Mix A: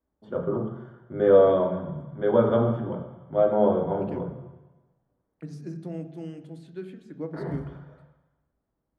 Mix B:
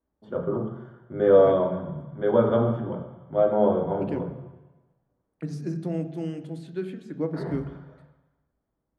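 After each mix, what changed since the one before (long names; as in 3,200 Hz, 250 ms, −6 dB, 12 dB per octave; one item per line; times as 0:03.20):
second voice +6.0 dB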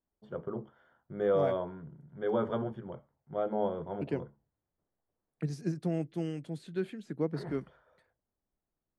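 first voice −3.5 dB
reverb: off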